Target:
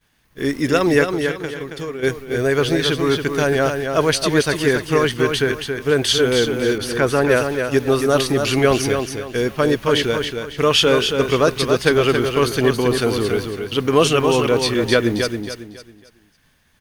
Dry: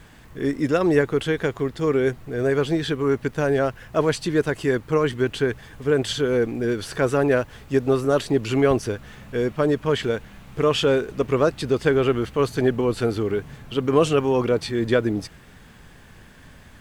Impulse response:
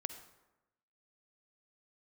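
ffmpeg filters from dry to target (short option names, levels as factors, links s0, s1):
-filter_complex "[0:a]asplit=3[s0][s1][s2];[s0]afade=t=out:st=1.03:d=0.02[s3];[s1]acompressor=threshold=0.0398:ratio=16,afade=t=in:st=1.03:d=0.02,afade=t=out:st=2.02:d=0.02[s4];[s2]afade=t=in:st=2.02:d=0.02[s5];[s3][s4][s5]amix=inputs=3:normalize=0,crystalizer=i=6:c=0,agate=range=0.0224:threshold=0.0355:ratio=3:detection=peak,highshelf=f=6400:g=-10,bandreject=f=7600:w=5.2,aecho=1:1:275|550|825|1100:0.501|0.16|0.0513|0.0164,asettb=1/sr,asplit=3[s6][s7][s8];[s6]atrim=end=6.784[s9];[s7]atrim=start=6.78:end=7.29,asetpts=PTS-STARTPTS,afade=t=in:d=0.004:c=qsin,afade=t=out:st=0.506:d=0.004:c=qsin,adynamicequalizer=threshold=0.0158:dfrequency=2500:dqfactor=0.7:tfrequency=2500:tqfactor=0.7:attack=5:release=100:ratio=0.375:range=3:mode=cutabove:tftype=highshelf[s10];[s8]atrim=start=7.286[s11];[s9][s10]acrossfade=d=0.004:c1=hsin:c2=qsin[s12];[s12][s11]acrossfade=d=0.004:c1=qsin:c2=hsin,volume=1.26"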